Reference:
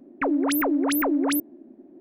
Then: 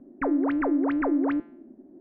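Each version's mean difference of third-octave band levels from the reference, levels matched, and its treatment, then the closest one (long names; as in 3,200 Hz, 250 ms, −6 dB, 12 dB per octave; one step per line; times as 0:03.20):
3.5 dB: low-pass filter 1,900 Hz 24 dB per octave
low-shelf EQ 150 Hz +10.5 dB
hum removal 172 Hz, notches 27
level −3 dB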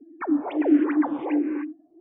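7.5 dB: three sine waves on the formant tracks
reverb whose tail is shaped and stops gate 340 ms rising, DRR 4.5 dB
frequency shifter mixed with the dry sound −1.4 Hz
level +3 dB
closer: first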